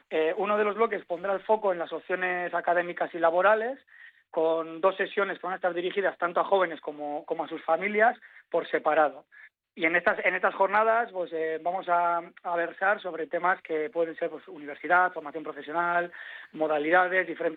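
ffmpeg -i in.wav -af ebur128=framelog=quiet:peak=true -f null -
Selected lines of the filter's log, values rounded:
Integrated loudness:
  I:         -27.1 LUFS
  Threshold: -37.5 LUFS
Loudness range:
  LRA:         2.5 LU
  Threshold: -47.6 LUFS
  LRA low:   -28.8 LUFS
  LRA high:  -26.4 LUFS
True peak:
  Peak:      -10.4 dBFS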